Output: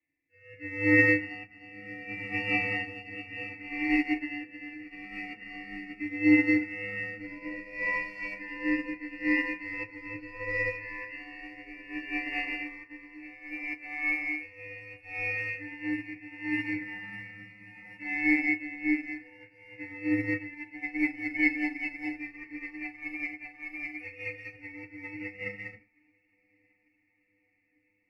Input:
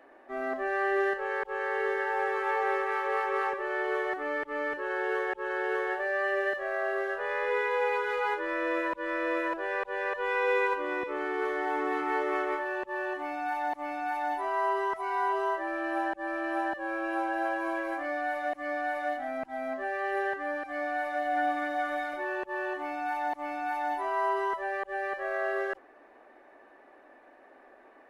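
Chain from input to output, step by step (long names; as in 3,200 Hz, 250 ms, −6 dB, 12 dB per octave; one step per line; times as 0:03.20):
band-splitting scrambler in four parts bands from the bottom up 2143
rotating-speaker cabinet horn 0.7 Hz, later 5 Hz, at 0:19.84
feedback delay with all-pass diffusion 1,033 ms, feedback 79%, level −16 dB
feedback delay network reverb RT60 0.63 s, low-frequency decay 0.95×, high-frequency decay 0.45×, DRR −4.5 dB
expander for the loud parts 2.5 to 1, over −40 dBFS
level +1.5 dB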